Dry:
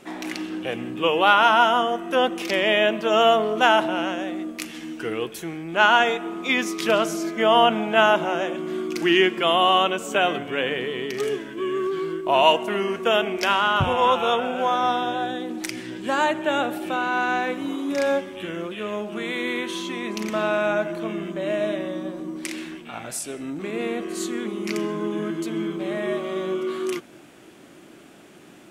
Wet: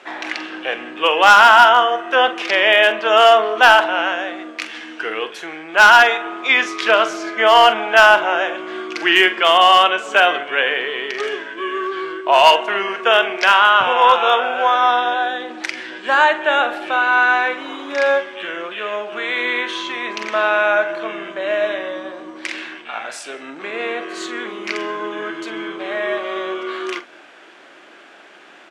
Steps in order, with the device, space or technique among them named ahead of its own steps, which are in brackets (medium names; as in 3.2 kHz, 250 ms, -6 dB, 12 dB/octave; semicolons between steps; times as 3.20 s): megaphone (band-pass 640–4000 Hz; peaking EQ 1.6 kHz +5 dB 0.26 oct; hard clipper -11.5 dBFS, distortion -19 dB; doubling 45 ms -12 dB); trim +8.5 dB